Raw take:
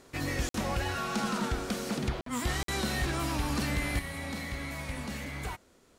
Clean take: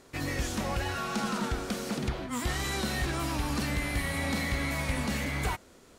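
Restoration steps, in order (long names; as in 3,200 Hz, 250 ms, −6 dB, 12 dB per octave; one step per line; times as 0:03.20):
repair the gap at 0:00.49/0:02.21/0:02.63, 53 ms
level 0 dB, from 0:03.99 +6.5 dB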